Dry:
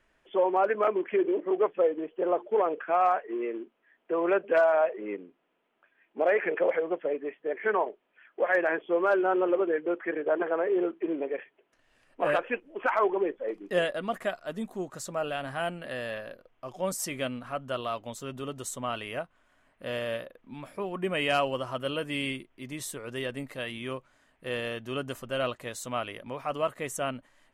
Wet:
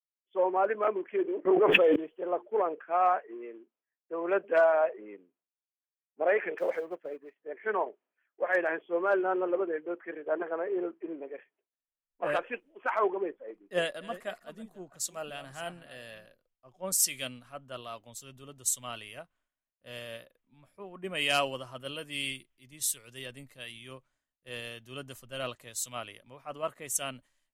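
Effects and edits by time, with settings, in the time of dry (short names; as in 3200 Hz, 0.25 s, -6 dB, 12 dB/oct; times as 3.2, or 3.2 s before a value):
1.45–1.96 fast leveller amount 100%
6.58–7.36 G.711 law mismatch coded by A
13.62–16.26 reverse delay 0.336 s, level -11 dB
whole clip: high shelf 3800 Hz +6.5 dB; expander -59 dBFS; three-band expander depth 100%; gain -5.5 dB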